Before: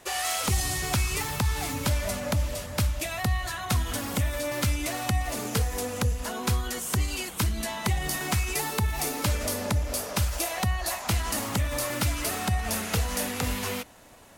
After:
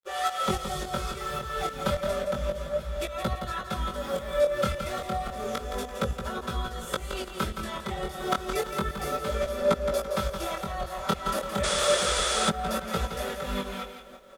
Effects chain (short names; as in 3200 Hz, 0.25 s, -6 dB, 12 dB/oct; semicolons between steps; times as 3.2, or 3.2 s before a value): comb 5.2 ms, depth 90%; tremolo saw up 3.6 Hz, depth 95%; feedback echo 0.169 s, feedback 38%, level -8 dB; chorus 0.31 Hz, delay 17 ms, depth 8 ms; bit-crush 10-bit; high shelf 4400 Hz -9 dB; painted sound noise, 11.63–12.5, 340–10000 Hz -31 dBFS; small resonant body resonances 510/1300/3400 Hz, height 14 dB, ringing for 20 ms